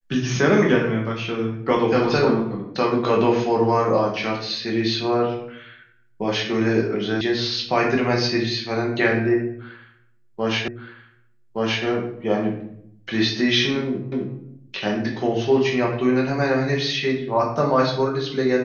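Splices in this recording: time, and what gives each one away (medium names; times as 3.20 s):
7.21 s: sound stops dead
10.68 s: repeat of the last 1.17 s
14.12 s: repeat of the last 0.26 s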